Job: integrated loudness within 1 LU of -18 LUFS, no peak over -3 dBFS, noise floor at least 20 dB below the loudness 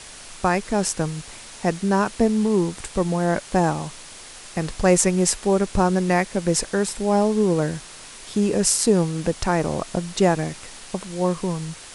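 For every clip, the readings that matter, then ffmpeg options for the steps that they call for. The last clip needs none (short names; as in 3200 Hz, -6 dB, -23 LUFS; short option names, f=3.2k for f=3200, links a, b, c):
noise floor -41 dBFS; noise floor target -42 dBFS; loudness -22.0 LUFS; peak -2.0 dBFS; loudness target -18.0 LUFS
-> -af "afftdn=nr=6:nf=-41"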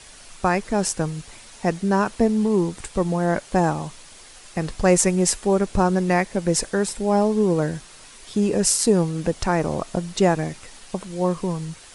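noise floor -45 dBFS; loudness -22.0 LUFS; peak -2.0 dBFS; loudness target -18.0 LUFS
-> -af "volume=4dB,alimiter=limit=-3dB:level=0:latency=1"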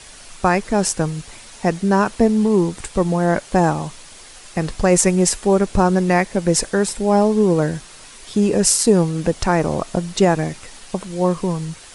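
loudness -18.0 LUFS; peak -3.0 dBFS; noise floor -41 dBFS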